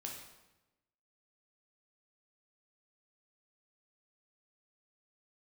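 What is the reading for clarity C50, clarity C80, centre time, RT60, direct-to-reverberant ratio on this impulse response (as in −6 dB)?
3.5 dB, 6.0 dB, 44 ms, 1.0 s, −0.5 dB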